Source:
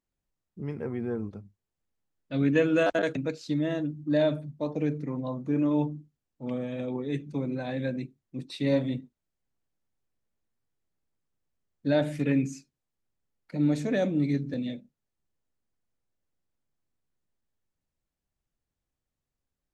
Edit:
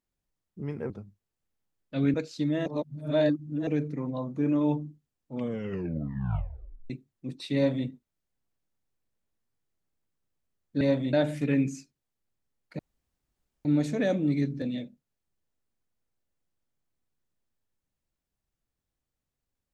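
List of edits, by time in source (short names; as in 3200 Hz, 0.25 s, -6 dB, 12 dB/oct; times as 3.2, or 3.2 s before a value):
0.9–1.28 cut
2.52–3.24 cut
3.76–4.77 reverse
6.49 tape stop 1.51 s
8.65–8.97 copy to 11.91
13.57 insert room tone 0.86 s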